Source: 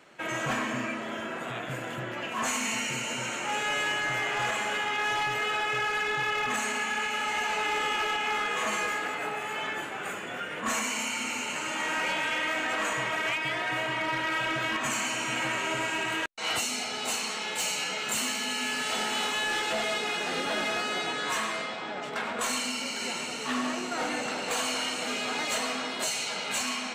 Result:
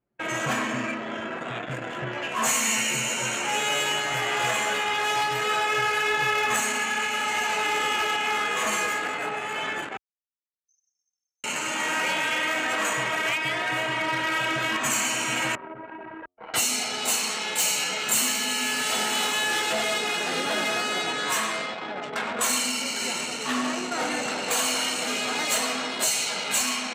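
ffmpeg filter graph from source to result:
-filter_complex "[0:a]asettb=1/sr,asplit=3[a][b][c];[a]atrim=end=1.914[d];[b]atrim=start=1.91:end=6.6,asetpts=PTS-STARTPTS,afade=t=in:d=0.004:c=qsin,afade=t=out:st=4.686:d=0.004:c=qsin,asplit=2[e][f];[f]adelay=14,volume=-5.5dB[g];[e][g]amix=inputs=2:normalize=0,atrim=end_sample=206829,acrossover=split=200[h][i];[h]adelay=40[j];[j][i]amix=inputs=2:normalize=0,atrim=end_sample=206829[k];[c]atrim=start=6.596[l];[d][k]acrossfade=d=0.004:c1=hsin:c2=qsin[m];[m][l]acrossfade=d=0.004:c1=qsin:c2=hsin,asettb=1/sr,asplit=3[n][o][p];[n]atrim=end=9.974[q];[o]atrim=start=9.97:end=11.44,asetpts=PTS-STARTPTS,afade=t=in:d=0.004:c=qsin,afade=t=out:st=1.466:d=0.004:c=qsin,aemphasis=mode=reproduction:type=75kf,afreqshift=57,asuperpass=centerf=5700:order=8:qfactor=3.9[r];[p]atrim=start=11.436[s];[q][r]acrossfade=d=0.004:c1=hsin:c2=qsin[t];[t][s]acrossfade=d=0.004:c1=qsin:c2=hsin,asettb=1/sr,asplit=3[u][v][w];[u]atrim=end=15.554[x];[v]atrim=start=15.55:end=16.54,asetpts=PTS-STARTPTS,afade=t=in:d=0.004:c=qsin,afade=t=out:st=0.986:d=0.004:c=qsin,lowpass=1.3k,acompressor=threshold=-35dB:ratio=6:attack=3.2:release=140:knee=1:detection=peak,bandreject=f=90.03:t=h:w=4,bandreject=f=180.06:t=h:w=4,bandreject=f=270.09:t=h:w=4,bandreject=f=360.12:t=h:w=4,bandreject=f=450.15:t=h:w=4,bandreject=f=540.18:t=h:w=4,bandreject=f=630.21:t=h:w=4,bandreject=f=720.24:t=h:w=4,bandreject=f=810.27:t=h:w=4,bandreject=f=900.3:t=h:w=4,bandreject=f=990.33:t=h:w=4,bandreject=f=1.08036k:t=h:w=4,bandreject=f=1.17039k:t=h:w=4,bandreject=f=1.26042k:t=h:w=4[y];[w]atrim=start=16.536[z];[x][y]acrossfade=d=0.004:c1=hsin:c2=qsin[aa];[aa][z]acrossfade=d=0.004:c1=qsin:c2=hsin,highpass=52,anlmdn=2.51,highshelf=f=8.4k:g=12,volume=3dB"

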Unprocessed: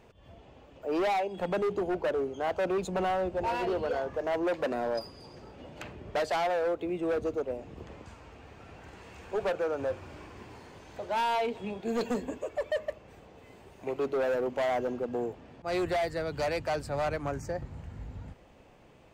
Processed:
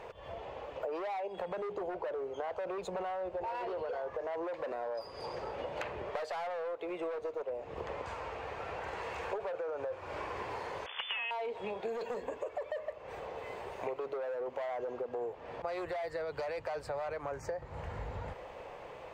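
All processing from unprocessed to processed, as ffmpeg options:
-filter_complex "[0:a]asettb=1/sr,asplit=3[a][b][c];[a]atrim=end=6.054[d];[b]atrim=start=6.05:end=7.5,asetpts=PTS-STARTPTS,afade=t=in:d=0.004:c=qsin,afade=t=out:st=1.446:d=0.004:c=qsin,lowshelf=f=240:g=-11,aeval=exprs='clip(val(0),-1,0.0224)':c=same[e];[c]atrim=start=7.496[f];[d][e]acrossfade=d=0.004:c1=hsin:c2=qsin[g];[g][f]acrossfade=d=0.004:c1=qsin:c2=hsin,asettb=1/sr,asplit=3[h][i][j];[h]atrim=end=10.864[k];[i]atrim=start=10.86:end=11.31,asetpts=PTS-STARTPTS,afade=t=in:d=0.004:c=qsin,afade=t=out:st=0.446:d=0.004:c=qsin,acrusher=bits=6:dc=4:mix=0:aa=0.000001,lowpass=f=3k:t=q:w=0.5098,lowpass=f=3k:t=q:w=0.6013,lowpass=f=3k:t=q:w=0.9,lowpass=f=3k:t=q:w=2.563,afreqshift=-3500[l];[j]atrim=start=11.306[m];[k][l]acrossfade=d=0.004:c1=hsin:c2=qsin[n];[n][m]acrossfade=d=0.004:c1=qsin:c2=hsin,equalizer=f=250:t=o:w=1:g=-7,equalizer=f=500:t=o:w=1:g=12,equalizer=f=1k:t=o:w=1:g=10,equalizer=f=2k:t=o:w=1:g=7,equalizer=f=4k:t=o:w=1:g=4,alimiter=limit=-18dB:level=0:latency=1:release=14,acompressor=threshold=-36dB:ratio=10,volume=1dB"

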